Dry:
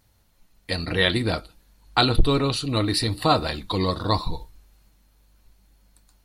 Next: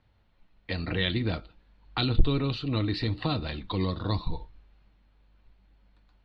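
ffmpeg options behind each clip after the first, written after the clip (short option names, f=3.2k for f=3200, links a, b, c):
-filter_complex "[0:a]lowpass=f=3.5k:w=0.5412,lowpass=f=3.5k:w=1.3066,acrossover=split=310|2500[a][b][c];[b]acompressor=threshold=-32dB:ratio=6[d];[a][d][c]amix=inputs=3:normalize=0,volume=-2.5dB"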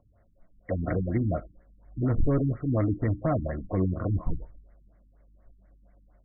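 -af "superequalizer=8b=2.51:9b=0.501,asoftclip=type=hard:threshold=-20.5dB,afftfilt=real='re*lt(b*sr/1024,300*pow(2300/300,0.5+0.5*sin(2*PI*4.2*pts/sr)))':imag='im*lt(b*sr/1024,300*pow(2300/300,0.5+0.5*sin(2*PI*4.2*pts/sr)))':win_size=1024:overlap=0.75,volume=3dB"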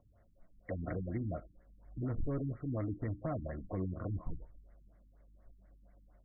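-af "acompressor=threshold=-44dB:ratio=1.5,volume=-3.5dB"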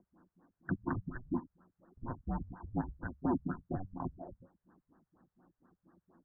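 -af "highpass=f=510:t=q:w=0.5412,highpass=f=510:t=q:w=1.307,lowpass=f=2k:t=q:w=0.5176,lowpass=f=2k:t=q:w=0.7071,lowpass=f=2k:t=q:w=1.932,afreqshift=-370,volume=10dB"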